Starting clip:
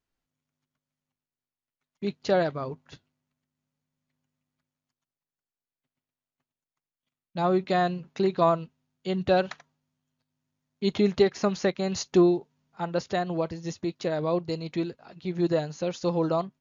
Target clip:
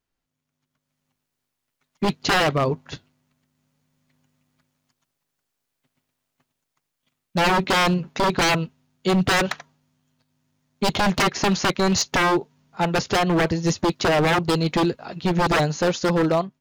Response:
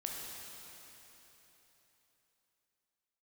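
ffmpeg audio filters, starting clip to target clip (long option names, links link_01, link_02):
-af "dynaudnorm=framelen=210:gausssize=9:maxgain=11.5dB,aeval=exprs='0.15*(abs(mod(val(0)/0.15+3,4)-2)-1)':channel_layout=same,volume=3dB"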